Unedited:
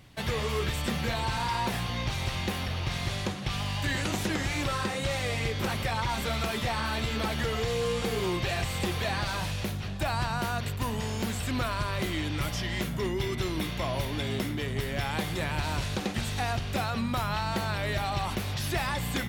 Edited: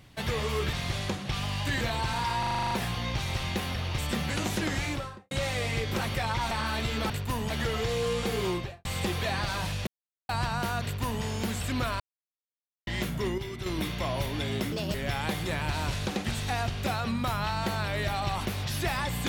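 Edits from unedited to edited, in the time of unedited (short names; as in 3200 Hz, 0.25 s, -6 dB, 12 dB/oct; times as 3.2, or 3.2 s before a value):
0.73–1.05 swap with 2.9–3.98
1.63 stutter 0.04 s, 9 plays
4.48–4.99 studio fade out
6.19–6.7 cut
8.27–8.64 studio fade out
9.66–10.08 mute
10.62–11.02 copy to 7.29
11.79–12.66 mute
13.17–13.45 gain -6.5 dB
14.51–14.84 speed 148%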